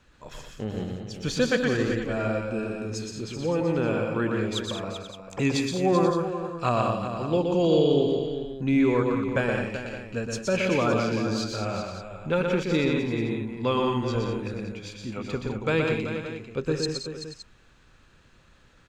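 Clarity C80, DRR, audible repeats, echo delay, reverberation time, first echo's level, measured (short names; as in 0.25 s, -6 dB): none, none, 6, 0.121 s, none, -4.0 dB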